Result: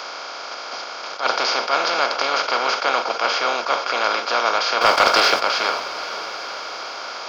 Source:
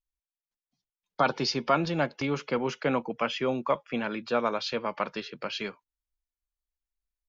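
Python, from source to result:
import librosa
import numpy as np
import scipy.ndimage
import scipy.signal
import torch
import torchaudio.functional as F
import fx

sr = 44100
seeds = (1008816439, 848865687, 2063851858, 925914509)

y = fx.bin_compress(x, sr, power=0.2)
y = scipy.signal.sosfilt(scipy.signal.butter(2, 730.0, 'highpass', fs=sr, output='sos'), y)
y = fx.leveller(y, sr, passes=2, at=(4.81, 5.4))
y = fx.echo_diffused(y, sr, ms=462, feedback_pct=62, wet_db=-14.0)
y = fx.attack_slew(y, sr, db_per_s=190.0)
y = y * 10.0 ** (2.5 / 20.0)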